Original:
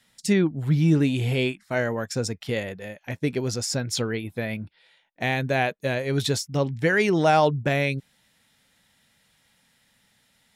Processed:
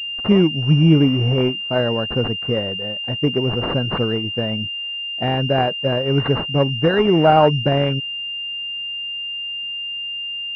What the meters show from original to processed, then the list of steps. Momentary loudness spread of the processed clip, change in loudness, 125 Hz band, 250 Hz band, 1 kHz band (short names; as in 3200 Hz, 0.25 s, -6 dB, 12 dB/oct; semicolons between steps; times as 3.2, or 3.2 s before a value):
11 LU, +5.5 dB, +6.5 dB, +6.5 dB, +6.0 dB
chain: pulse-width modulation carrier 2800 Hz; gain +6.5 dB